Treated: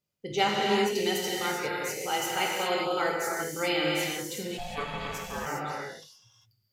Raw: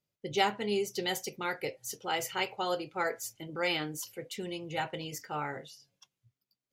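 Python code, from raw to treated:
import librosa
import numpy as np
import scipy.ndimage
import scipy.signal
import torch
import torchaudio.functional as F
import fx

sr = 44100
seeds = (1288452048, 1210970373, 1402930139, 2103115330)

y = fx.rev_gated(x, sr, seeds[0], gate_ms=430, shape='flat', drr_db=-3.5)
y = fx.ring_mod(y, sr, carrier_hz=360.0, at=(4.57, 5.45), fade=0.02)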